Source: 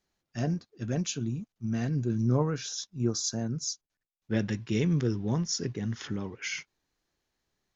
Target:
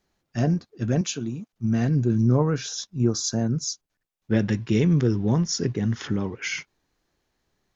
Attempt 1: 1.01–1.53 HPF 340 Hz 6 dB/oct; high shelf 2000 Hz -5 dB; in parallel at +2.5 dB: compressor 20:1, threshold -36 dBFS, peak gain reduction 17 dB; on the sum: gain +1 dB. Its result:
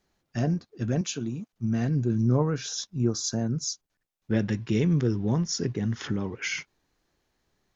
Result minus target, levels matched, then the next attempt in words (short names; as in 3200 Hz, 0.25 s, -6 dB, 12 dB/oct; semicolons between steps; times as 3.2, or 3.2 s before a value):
compressor: peak gain reduction +10.5 dB
1.01–1.53 HPF 340 Hz 6 dB/oct; high shelf 2000 Hz -5 dB; in parallel at +2.5 dB: compressor 20:1, threshold -25 dBFS, peak gain reduction 6.5 dB; on the sum: gain +1 dB